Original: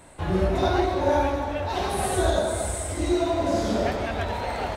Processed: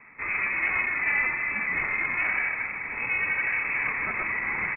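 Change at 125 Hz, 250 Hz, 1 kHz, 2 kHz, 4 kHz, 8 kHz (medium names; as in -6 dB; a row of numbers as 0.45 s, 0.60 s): -19.0 dB, -18.0 dB, -8.5 dB, +12.0 dB, under -20 dB, under -40 dB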